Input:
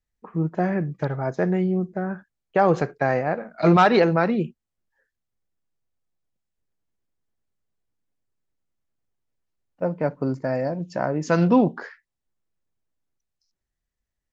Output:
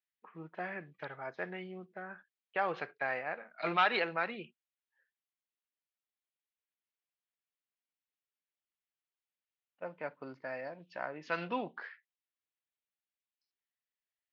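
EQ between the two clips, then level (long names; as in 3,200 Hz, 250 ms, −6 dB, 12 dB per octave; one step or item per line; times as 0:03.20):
resonant band-pass 3,100 Hz, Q 1.5
high-frequency loss of the air 290 metres
+2.5 dB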